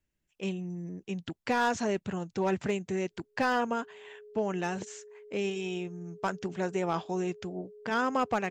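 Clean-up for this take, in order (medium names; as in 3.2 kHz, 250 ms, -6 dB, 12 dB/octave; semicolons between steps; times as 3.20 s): clip repair -20 dBFS; band-stop 420 Hz, Q 30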